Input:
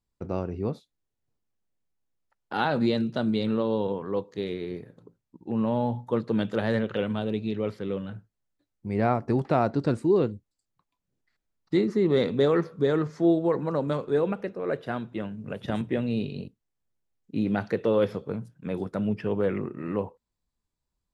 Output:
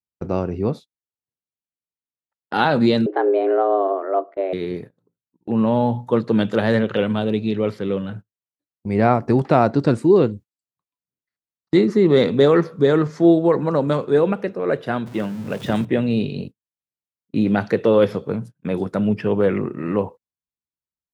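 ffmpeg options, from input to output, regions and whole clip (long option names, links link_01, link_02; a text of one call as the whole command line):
ffmpeg -i in.wav -filter_complex "[0:a]asettb=1/sr,asplit=3[link_01][link_02][link_03];[link_01]atrim=end=3.064[link_04];[link_02]atrim=start=3.06:end=4.53,asetpts=PTS-STARTPTS,afade=type=in:duration=0.004:curve=qsin,afade=type=out:start_time=1.466:duration=0.004:curve=qsin,lowpass=frequency=1900:width=0.5412,lowpass=frequency=1900:width=1.3066,afreqshift=190[link_05];[link_03]atrim=start=4.526[link_06];[link_04][link_05]acrossfade=duration=0.004:curve1=hsin:curve2=qsin[link_07];[link_07][link_06]acrossfade=duration=0.004:curve1=qsin:curve2=hsin,asettb=1/sr,asplit=3[link_08][link_09][link_10];[link_08]atrim=end=15.064[link_11];[link_09]atrim=start=15.06:end=15.85,asetpts=PTS-STARTPTS,afade=type=in:duration=0.004:curve=qsin,afade=type=out:start_time=0.786:duration=0.004:curve=qsin,aeval=exprs='val(0)+0.5*0.0075*sgn(val(0))':channel_layout=same,bandreject=frequency=50:width_type=h:width=6,bandreject=frequency=100:width_type=h:width=6,bandreject=frequency=150:width_type=h:width=6[link_12];[link_10]atrim=start=15.846[link_13];[link_11][link_12]acrossfade=duration=0.004:curve1=hsin:curve2=qsin[link_14];[link_14][link_13]acrossfade=duration=0.004:curve1=qsin:curve2=hsin,highpass=81,agate=range=-23dB:threshold=-42dB:ratio=16:detection=peak,volume=8dB" out.wav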